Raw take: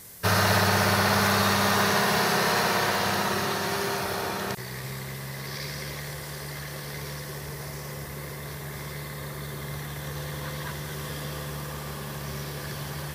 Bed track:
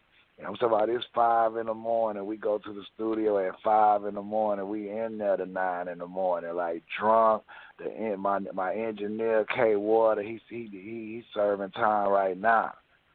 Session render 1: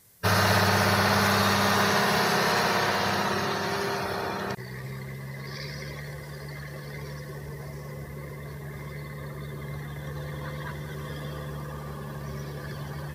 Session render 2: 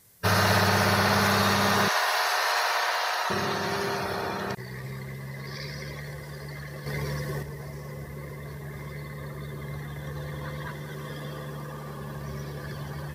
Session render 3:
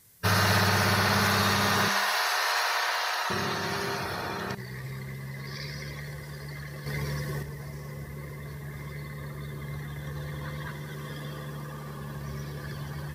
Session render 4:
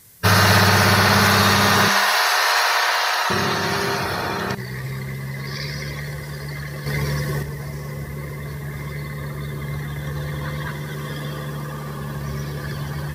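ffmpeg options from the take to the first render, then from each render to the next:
ffmpeg -i in.wav -af "afftdn=noise_reduction=12:noise_floor=-38" out.wav
ffmpeg -i in.wav -filter_complex "[0:a]asettb=1/sr,asplit=3[link_01][link_02][link_03];[link_01]atrim=end=1.884[link_04];[link_02]atrim=start=1.88:end=3.3,asetpts=PTS-STARTPTS,afade=type=in:duration=0.004:curve=qsin,afade=type=out:start_time=1.416:duration=0.004:curve=qsin,highpass=frequency=610:width=0.5412,highpass=frequency=610:width=1.3066[link_05];[link_03]atrim=start=3.296[link_06];[link_04][link_05]acrossfade=duration=0.004:curve1=hsin:curve2=qsin[link_07];[link_07][link_06]acrossfade=duration=0.004:curve1=qsin:curve2=hsin,asettb=1/sr,asplit=3[link_08][link_09][link_10];[link_08]atrim=end=6.864[link_11];[link_09]atrim=start=6.86:end=7.43,asetpts=PTS-STARTPTS,afade=type=in:duration=0.004:curve=qsin,afade=type=out:start_time=0.566:duration=0.004:curve=qsin,acontrast=64[link_12];[link_10]atrim=start=7.426[link_13];[link_11][link_12]acrossfade=duration=0.004:curve1=hsin:curve2=qsin[link_14];[link_14][link_13]acrossfade=duration=0.004:curve1=qsin:curve2=hsin,asettb=1/sr,asplit=3[link_15][link_16][link_17];[link_15]atrim=end=10.684[link_18];[link_16]atrim=start=10.68:end=11.98,asetpts=PTS-STARTPTS,afade=type=in:duration=0.004:curve=qsin,afade=type=out:start_time=1.296:duration=0.004:curve=qsin,highpass=110[link_19];[link_17]atrim=start=11.976[link_20];[link_18][link_19]acrossfade=duration=0.004:curve1=hsin:curve2=qsin[link_21];[link_21][link_20]acrossfade=duration=0.004:curve1=qsin:curve2=hsin" out.wav
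ffmpeg -i in.wav -af "equalizer=frequency=600:width=0.97:gain=-4.5,bandreject=frequency=197:width_type=h:width=4,bandreject=frequency=394:width_type=h:width=4,bandreject=frequency=591:width_type=h:width=4,bandreject=frequency=788:width_type=h:width=4,bandreject=frequency=985:width_type=h:width=4,bandreject=frequency=1182:width_type=h:width=4,bandreject=frequency=1379:width_type=h:width=4,bandreject=frequency=1576:width_type=h:width=4,bandreject=frequency=1773:width_type=h:width=4,bandreject=frequency=1970:width_type=h:width=4,bandreject=frequency=2167:width_type=h:width=4,bandreject=frequency=2364:width_type=h:width=4,bandreject=frequency=2561:width_type=h:width=4,bandreject=frequency=2758:width_type=h:width=4,bandreject=frequency=2955:width_type=h:width=4,bandreject=frequency=3152:width_type=h:width=4,bandreject=frequency=3349:width_type=h:width=4,bandreject=frequency=3546:width_type=h:width=4,bandreject=frequency=3743:width_type=h:width=4,bandreject=frequency=3940:width_type=h:width=4,bandreject=frequency=4137:width_type=h:width=4,bandreject=frequency=4334:width_type=h:width=4,bandreject=frequency=4531:width_type=h:width=4,bandreject=frequency=4728:width_type=h:width=4,bandreject=frequency=4925:width_type=h:width=4,bandreject=frequency=5122:width_type=h:width=4,bandreject=frequency=5319:width_type=h:width=4,bandreject=frequency=5516:width_type=h:width=4,bandreject=frequency=5713:width_type=h:width=4,bandreject=frequency=5910:width_type=h:width=4,bandreject=frequency=6107:width_type=h:width=4,bandreject=frequency=6304:width_type=h:width=4,bandreject=frequency=6501:width_type=h:width=4,bandreject=frequency=6698:width_type=h:width=4" out.wav
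ffmpeg -i in.wav -af "volume=9dB" out.wav

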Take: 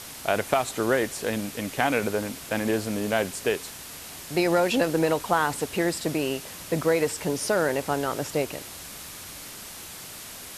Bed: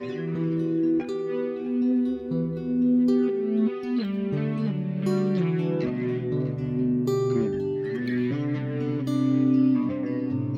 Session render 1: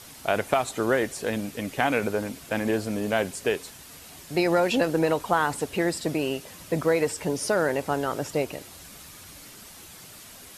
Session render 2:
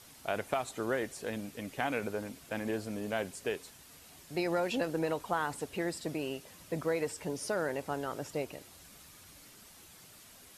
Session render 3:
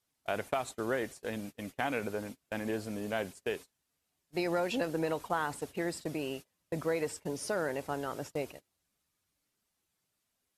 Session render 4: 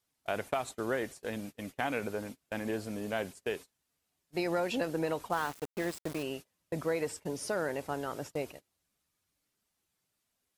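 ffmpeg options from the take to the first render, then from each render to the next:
ffmpeg -i in.wav -af "afftdn=noise_reduction=7:noise_floor=-41" out.wav
ffmpeg -i in.wav -af "volume=-9.5dB" out.wav
ffmpeg -i in.wav -af "agate=range=-27dB:threshold=-42dB:ratio=16:detection=peak" out.wav
ffmpeg -i in.wav -filter_complex "[0:a]asettb=1/sr,asplit=3[link_01][link_02][link_03];[link_01]atrim=end=5.324[link_04];[link_02]atrim=start=5.32:end=6.23,asetpts=PTS-STARTPTS,afade=type=in:duration=0.004:curve=qsin,afade=type=out:start_time=0.906:duration=0.004:curve=qsin,aeval=exprs='val(0)*gte(abs(val(0)),0.0112)':channel_layout=same[link_05];[link_03]atrim=start=6.226[link_06];[link_04][link_05]acrossfade=duration=0.004:curve1=hsin:curve2=qsin[link_07];[link_07][link_06]acrossfade=duration=0.004:curve1=qsin:curve2=hsin" out.wav

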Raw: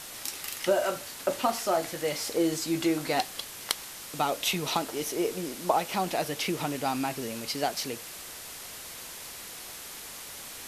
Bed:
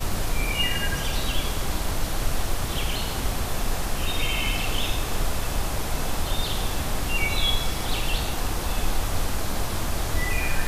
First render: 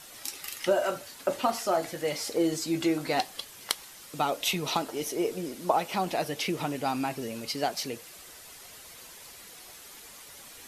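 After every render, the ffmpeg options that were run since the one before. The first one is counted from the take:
ffmpeg -i in.wav -af "afftdn=noise_reduction=8:noise_floor=-43" out.wav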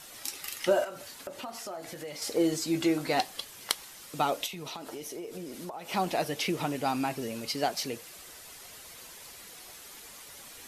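ffmpeg -i in.wav -filter_complex "[0:a]asettb=1/sr,asplit=3[link_01][link_02][link_03];[link_01]atrim=end=0.844[link_04];[link_02]atrim=start=0.84:end=2.22,asetpts=PTS-STARTPTS,afade=type=in:duration=0.004:curve=qsin,afade=type=out:start_time=1.376:duration=0.004:curve=qsin,acompressor=threshold=-38dB:ratio=4:attack=3.2:release=140:knee=1:detection=peak[link_05];[link_03]atrim=start=2.216[link_06];[link_04][link_05]acrossfade=duration=0.004:curve1=hsin:curve2=qsin[link_07];[link_07][link_06]acrossfade=duration=0.004:curve1=qsin:curve2=hsin,asplit=3[link_08][link_09][link_10];[link_08]afade=type=out:start_time=4.45:duration=0.02[link_11];[link_09]acompressor=threshold=-36dB:ratio=10:attack=3.2:release=140:knee=1:detection=peak,afade=type=in:start_time=4.45:duration=0.02,afade=type=out:start_time=5.89:duration=0.02[link_12];[link_10]afade=type=in:start_time=5.89:duration=0.02[link_13];[link_11][link_12][link_13]amix=inputs=3:normalize=0" out.wav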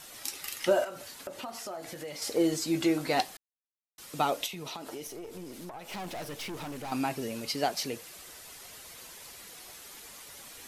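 ffmpeg -i in.wav -filter_complex "[0:a]asettb=1/sr,asplit=3[link_01][link_02][link_03];[link_01]atrim=end=5.074[link_04];[link_02]atrim=start=5.07:end=6.92,asetpts=PTS-STARTPTS,afade=type=in:duration=0.004:curve=qsin,afade=type=out:start_time=1.846:duration=0.004:curve=qsin,aeval=exprs='(tanh(63.1*val(0)+0.45)-tanh(0.45))/63.1':channel_layout=same[link_05];[link_03]atrim=start=6.916[link_06];[link_04][link_05]acrossfade=duration=0.004:curve1=hsin:curve2=qsin[link_07];[link_07][link_06]acrossfade=duration=0.004:curve1=qsin:curve2=hsin,asplit=3[link_08][link_09][link_10];[link_08]atrim=end=3.37,asetpts=PTS-STARTPTS,afade=type=out:start_time=3.366:duration=0.004:curve=hsin[link_11];[link_09]atrim=start=3.37:end=3.98,asetpts=PTS-STARTPTS,volume=0[link_12];[link_10]atrim=start=3.98,asetpts=PTS-STARTPTS,afade=type=in:duration=0.004:curve=hsin[link_13];[link_11][link_12][link_13]concat=n=3:v=0:a=1" out.wav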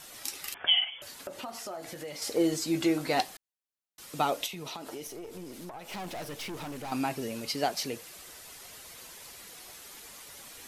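ffmpeg -i in.wav -filter_complex "[0:a]asettb=1/sr,asplit=3[link_01][link_02][link_03];[link_01]atrim=end=0.544[link_04];[link_02]atrim=start=0.54:end=1.02,asetpts=PTS-STARTPTS,afade=type=in:duration=0.004:curve=qsin,afade=type=out:start_time=0.476:duration=0.004:curve=qsin,lowpass=frequency=3100:width_type=q:width=0.5098,lowpass=frequency=3100:width_type=q:width=0.6013,lowpass=frequency=3100:width_type=q:width=0.9,lowpass=frequency=3100:width_type=q:width=2.563,afreqshift=-3600[link_05];[link_03]atrim=start=1.016[link_06];[link_04][link_05]acrossfade=duration=0.004:curve1=hsin:curve2=qsin[link_07];[link_07][link_06]acrossfade=duration=0.004:curve1=qsin:curve2=hsin" out.wav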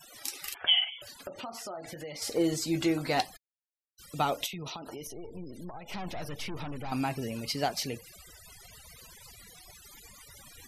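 ffmpeg -i in.wav -af "asubboost=boost=2.5:cutoff=180,afftfilt=real='re*gte(hypot(re,im),0.00501)':imag='im*gte(hypot(re,im),0.00501)':win_size=1024:overlap=0.75" out.wav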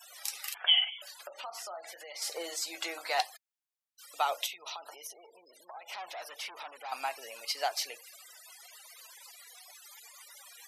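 ffmpeg -i in.wav -af "highpass=frequency=630:width=0.5412,highpass=frequency=630:width=1.3066" out.wav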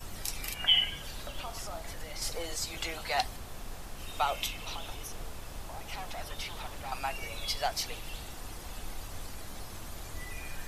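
ffmpeg -i in.wav -i bed.wav -filter_complex "[1:a]volume=-16.5dB[link_01];[0:a][link_01]amix=inputs=2:normalize=0" out.wav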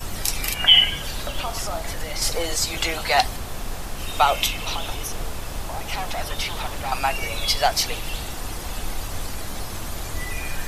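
ffmpeg -i in.wav -af "volume=12dB,alimiter=limit=-3dB:level=0:latency=1" out.wav

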